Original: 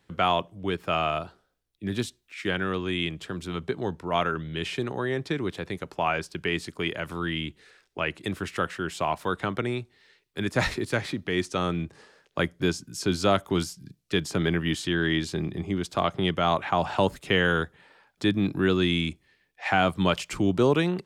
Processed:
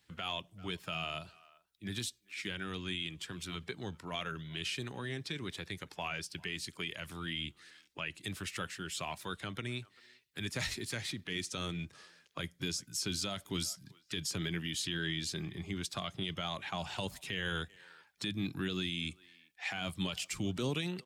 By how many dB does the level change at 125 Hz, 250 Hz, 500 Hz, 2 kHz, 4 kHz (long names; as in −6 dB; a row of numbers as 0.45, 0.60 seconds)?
−10.5, −13.0, −17.0, −10.5, −5.5 decibels